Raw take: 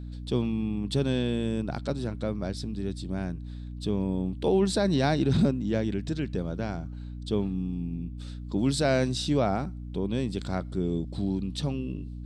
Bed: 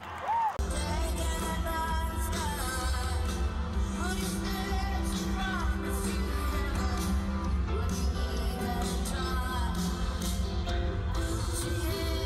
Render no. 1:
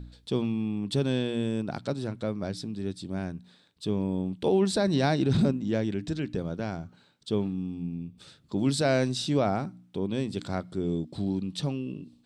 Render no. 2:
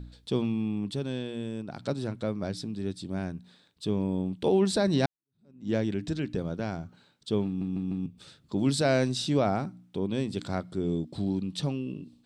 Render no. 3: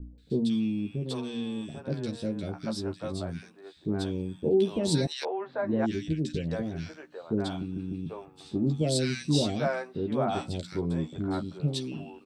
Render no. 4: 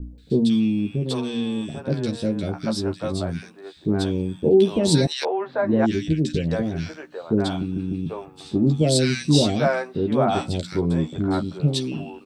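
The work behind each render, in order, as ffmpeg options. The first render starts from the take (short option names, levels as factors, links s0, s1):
-af "bandreject=f=60:t=h:w=4,bandreject=f=120:t=h:w=4,bandreject=f=180:t=h:w=4,bandreject=f=240:t=h:w=4,bandreject=f=300:t=h:w=4"
-filter_complex "[0:a]asplit=8[s0][s1][s2][s3][s4][s5][s6][s7];[s0]atrim=end=0.912[s8];[s1]atrim=start=0.908:end=1.792,asetpts=PTS-STARTPTS,volume=0.501[s9];[s2]atrim=start=1.788:end=5.06,asetpts=PTS-STARTPTS,afade=t=out:st=3.268:d=0.004:c=hsin[s10];[s3]atrim=start=5.06:end=7.612,asetpts=PTS-STARTPTS,afade=t=in:d=0.64:c=exp[s11];[s4]atrim=start=7.458:end=7.612[s12];[s5]atrim=start=7.458:end=7.612[s13];[s6]atrim=start=7.458:end=7.612[s14];[s7]atrim=start=8.058[s15];[s8][s9]acrossfade=d=0.004:c1=hsin:c2=hsin[s16];[s10][s11]concat=n=2:v=0:a=1[s17];[s16][s17]acrossfade=d=0.004:c1=hsin:c2=hsin[s18];[s18][s12]acrossfade=d=0.004:c1=hsin:c2=hsin[s19];[s19][s13]acrossfade=d=0.004:c1=hsin:c2=hsin[s20];[s20][s14]acrossfade=d=0.004:c1=hsin:c2=hsin[s21];[s21][s15]acrossfade=d=0.004:c1=hsin:c2=hsin"
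-filter_complex "[0:a]asplit=2[s0][s1];[s1]adelay=13,volume=0.562[s2];[s0][s2]amix=inputs=2:normalize=0,acrossover=split=540|1800[s3][s4][s5];[s5]adelay=180[s6];[s4]adelay=790[s7];[s3][s7][s6]amix=inputs=3:normalize=0"
-af "volume=2.51"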